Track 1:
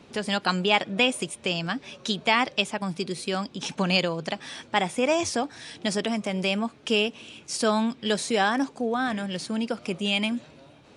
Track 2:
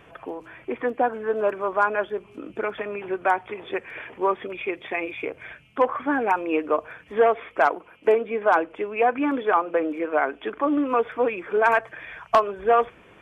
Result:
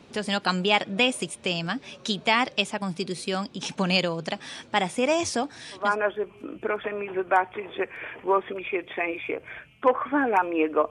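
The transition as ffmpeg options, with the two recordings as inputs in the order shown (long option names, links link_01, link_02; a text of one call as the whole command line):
ffmpeg -i cue0.wav -i cue1.wav -filter_complex "[0:a]apad=whole_dur=10.9,atrim=end=10.9,atrim=end=5.97,asetpts=PTS-STARTPTS[link_01];[1:a]atrim=start=1.65:end=6.84,asetpts=PTS-STARTPTS[link_02];[link_01][link_02]acrossfade=duration=0.26:curve1=tri:curve2=tri" out.wav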